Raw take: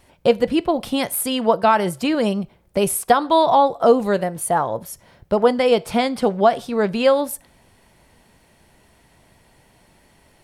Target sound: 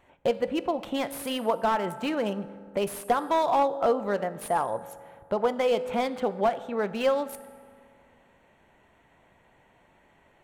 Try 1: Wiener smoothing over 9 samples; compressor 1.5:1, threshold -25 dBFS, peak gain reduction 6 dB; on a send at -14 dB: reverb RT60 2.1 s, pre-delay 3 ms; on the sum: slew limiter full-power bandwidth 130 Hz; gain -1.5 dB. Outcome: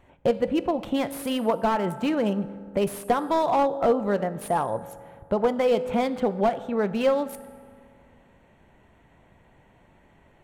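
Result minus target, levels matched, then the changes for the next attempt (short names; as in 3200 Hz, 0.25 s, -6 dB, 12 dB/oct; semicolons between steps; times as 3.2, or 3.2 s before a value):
250 Hz band +3.5 dB
add after compressor: low shelf 300 Hz -10 dB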